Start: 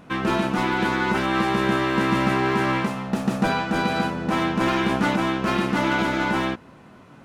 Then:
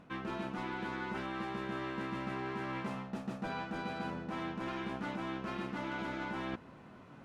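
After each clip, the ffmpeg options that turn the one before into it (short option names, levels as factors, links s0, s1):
-af "highshelf=f=7400:g=-11,areverse,acompressor=threshold=0.0316:ratio=6,areverse,volume=0.473"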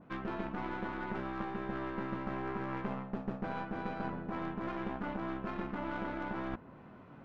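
-af "adynamicsmooth=sensitivity=3.5:basefreq=3000,aeval=exprs='0.0473*(cos(1*acos(clip(val(0)/0.0473,-1,1)))-cos(1*PI/2))+0.0237*(cos(2*acos(clip(val(0)/0.0473,-1,1)))-cos(2*PI/2))':c=same,adynamicequalizer=threshold=0.00158:dfrequency=1900:dqfactor=0.7:tfrequency=1900:tqfactor=0.7:attack=5:release=100:ratio=0.375:range=2.5:mode=cutabove:tftype=highshelf,volume=1.12"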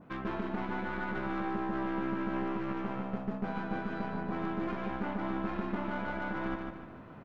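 -af "alimiter=level_in=1.58:limit=0.0631:level=0:latency=1:release=76,volume=0.631,aecho=1:1:149|298|447|596|745:0.631|0.252|0.101|0.0404|0.0162,volume=1.33"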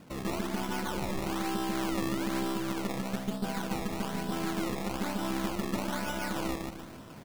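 -af "acrusher=samples=20:mix=1:aa=0.000001:lfo=1:lforange=20:lforate=1.1,volume=1.26"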